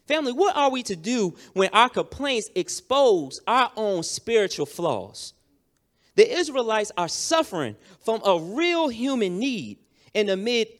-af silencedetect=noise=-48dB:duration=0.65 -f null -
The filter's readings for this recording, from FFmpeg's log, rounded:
silence_start: 5.31
silence_end: 6.17 | silence_duration: 0.86